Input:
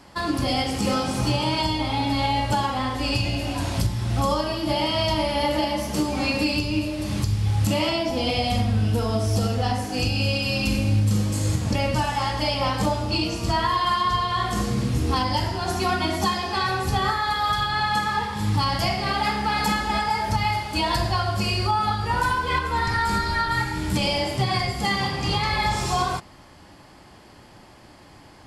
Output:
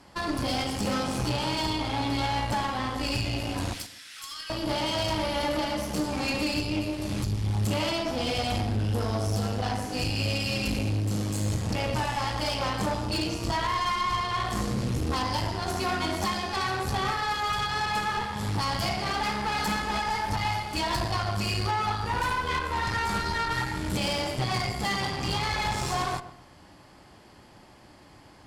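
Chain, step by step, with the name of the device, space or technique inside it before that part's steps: 3.73–4.50 s: steep high-pass 1.5 kHz 36 dB/octave; rockabilly slapback (valve stage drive 23 dB, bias 0.75; tape echo 124 ms, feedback 32%, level -10.5 dB, low-pass 1.3 kHz)

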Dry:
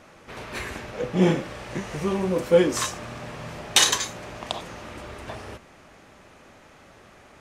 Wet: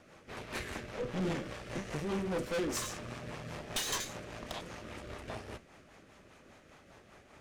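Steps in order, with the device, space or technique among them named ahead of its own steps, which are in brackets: overdriven rotary cabinet (valve stage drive 30 dB, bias 0.8; rotary cabinet horn 5 Hz)

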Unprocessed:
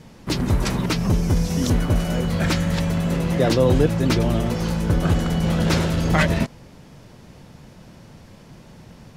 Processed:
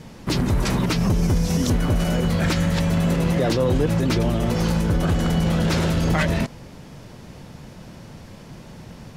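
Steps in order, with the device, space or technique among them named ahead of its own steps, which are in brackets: clipper into limiter (hard clipper -9.5 dBFS, distortion -27 dB; peak limiter -16.5 dBFS, peak gain reduction 7 dB); trim +4 dB

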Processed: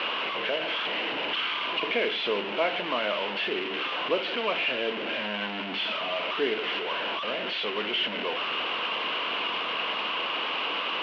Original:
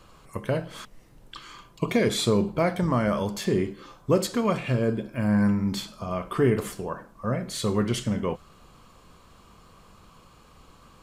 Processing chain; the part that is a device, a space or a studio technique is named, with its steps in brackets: digital answering machine (band-pass 400–3300 Hz; one-bit delta coder 32 kbps, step -24.5 dBFS; cabinet simulation 370–3000 Hz, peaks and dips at 380 Hz -4 dB, 540 Hz -5 dB, 790 Hz -5 dB, 1.2 kHz -7 dB, 1.8 kHz -5 dB, 2.9 kHz +10 dB); trim +3.5 dB

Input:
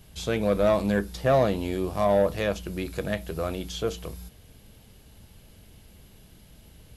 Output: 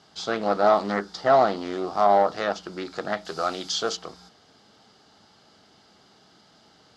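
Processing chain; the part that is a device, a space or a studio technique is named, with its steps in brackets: 3.25–3.97 s: treble shelf 3.2 kHz +11.5 dB; full-range speaker at full volume (loudspeaker Doppler distortion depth 0.36 ms; cabinet simulation 290–6500 Hz, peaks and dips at 520 Hz -5 dB, 780 Hz +7 dB, 1.3 kHz +9 dB, 2.5 kHz -9 dB, 4.8 kHz +7 dB); trim +2 dB

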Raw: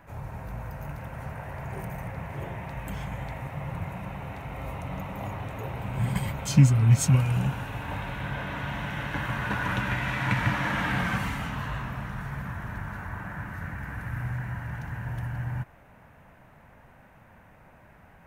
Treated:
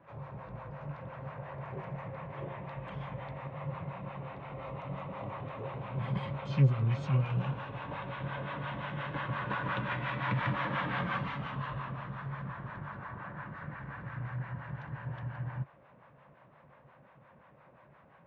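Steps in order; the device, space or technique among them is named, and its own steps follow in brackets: guitar amplifier with harmonic tremolo (harmonic tremolo 5.7 Hz, depth 70%, crossover 570 Hz; saturation -16.5 dBFS, distortion -17 dB; cabinet simulation 83–3900 Hz, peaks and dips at 85 Hz -8 dB, 140 Hz +7 dB, 360 Hz +4 dB, 540 Hz +9 dB, 1.1 kHz +9 dB, 3.5 kHz +4 dB); trim -5 dB

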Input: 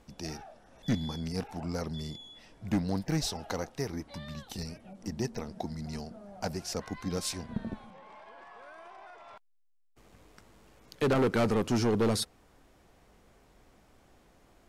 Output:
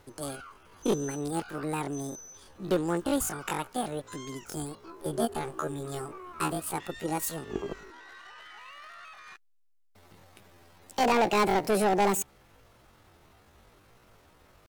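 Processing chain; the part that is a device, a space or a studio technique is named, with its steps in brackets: 4.85–6.67 s: doubling 23 ms -3 dB; chipmunk voice (pitch shift +10 st); trim +2.5 dB

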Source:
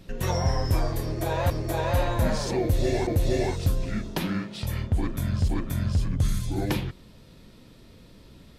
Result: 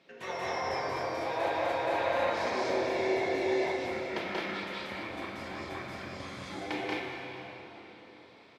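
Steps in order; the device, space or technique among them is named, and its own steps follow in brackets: station announcement (band-pass 460–3900 Hz; peaking EQ 2.2 kHz +7 dB 0.22 oct; loudspeakers at several distances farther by 63 m -1 dB, 74 m -2 dB; reverberation RT60 4.1 s, pre-delay 6 ms, DRR -0.5 dB); trim -6.5 dB

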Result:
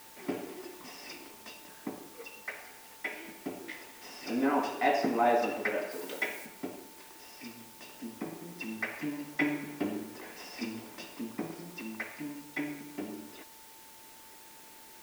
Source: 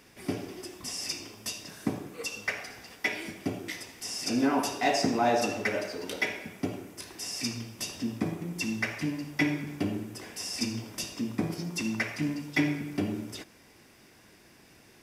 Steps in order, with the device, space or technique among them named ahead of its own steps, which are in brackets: shortwave radio (band-pass 270–2600 Hz; tremolo 0.2 Hz, depth 57%; whistle 890 Hz -58 dBFS; white noise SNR 17 dB); 5.91–6.46 s: treble shelf 5.5 kHz +7.5 dB

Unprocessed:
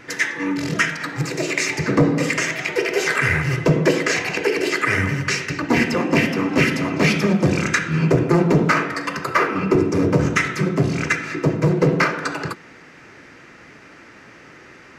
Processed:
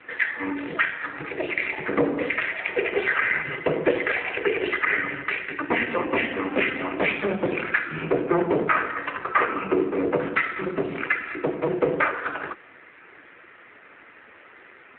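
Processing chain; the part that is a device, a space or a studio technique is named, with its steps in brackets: 0.69–1.75 s: high-pass 54 Hz 6 dB/octave; telephone (band-pass 390–3500 Hz; AMR-NB 7.4 kbps 8 kHz)

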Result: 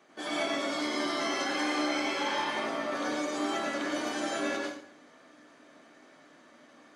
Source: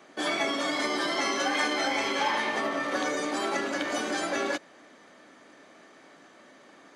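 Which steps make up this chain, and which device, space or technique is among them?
bathroom (reverberation RT60 0.65 s, pre-delay 87 ms, DRR -3 dB); trim -8 dB

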